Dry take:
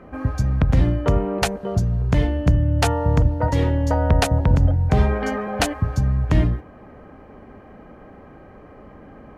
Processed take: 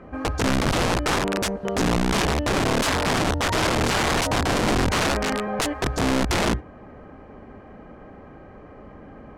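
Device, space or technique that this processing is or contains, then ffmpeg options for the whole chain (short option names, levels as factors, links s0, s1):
overflowing digital effects unit: -af "aeval=exprs='(mod(6.68*val(0)+1,2)-1)/6.68':c=same,lowpass=8800"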